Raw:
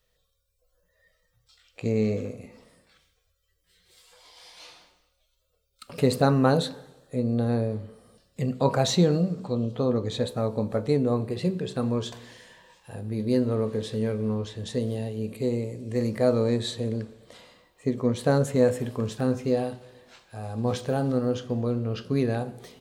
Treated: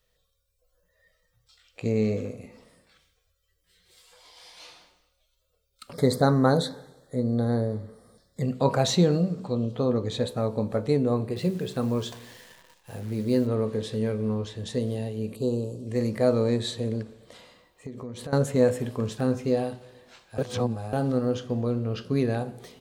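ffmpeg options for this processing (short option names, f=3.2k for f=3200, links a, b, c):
-filter_complex "[0:a]asplit=3[a][b][c];[a]afade=t=out:st=5.92:d=0.02[d];[b]asuperstop=centerf=2700:order=8:qfactor=2.4,afade=t=in:st=5.92:d=0.02,afade=t=out:st=8.42:d=0.02[e];[c]afade=t=in:st=8.42:d=0.02[f];[d][e][f]amix=inputs=3:normalize=0,asettb=1/sr,asplit=3[g][h][i];[g]atrim=end=11.364[j];[h]atrim=start=11.36:end=13.47,asetpts=PTS-STARTPTS,afade=t=in:d=0.004:c=qsin,afade=t=out:st=2.106:d=0.004:c=qsin,acrusher=bits=9:dc=4:mix=0:aa=0.000001[k];[i]atrim=start=13.466[l];[j][k]acrossfade=d=0.004:c1=hsin:c2=qsin[m];[m][l]acrossfade=d=0.004:c1=qsin:c2=hsin,asettb=1/sr,asplit=3[n][o][p];[n]atrim=end=15.354[q];[o]atrim=start=15.35:end=15.87,asetpts=PTS-STARTPTS,afade=t=in:d=0.004:c=qsin,afade=t=out:st=0.516:d=0.004:c=qsin,asuperstop=centerf=1900:order=8:qfactor=1.3[r];[p]atrim=start=15.866[s];[q][r]acrossfade=d=0.004:c1=hsin:c2=qsin[t];[t][s]acrossfade=d=0.004:c1=qsin:c2=hsin,asettb=1/sr,asplit=3[u][v][w];[u]atrim=end=17.024[x];[v]atrim=start=17.02:end=18.33,asetpts=PTS-STARTPTS,afade=t=in:d=0.004:c=qsin,afade=t=out:st=1.306:d=0.004:c=qsin,acompressor=threshold=-34dB:ratio=6:attack=3.2:release=140:knee=1:detection=peak[y];[w]atrim=start=18.326[z];[x][y]acrossfade=d=0.004:c1=hsin:c2=qsin[aa];[aa][z]acrossfade=d=0.004:c1=qsin:c2=hsin,asplit=3[ab][ac][ad];[ab]atrim=end=20.382[ae];[ac]atrim=start=20.378:end=20.932,asetpts=PTS-STARTPTS,areverse[af];[ad]atrim=start=20.928[ag];[ae][af]acrossfade=d=0.004:c1=hsin:c2=hsin[ah];[ah][ag]acrossfade=d=0.004:c1=hsin:c2=hsin"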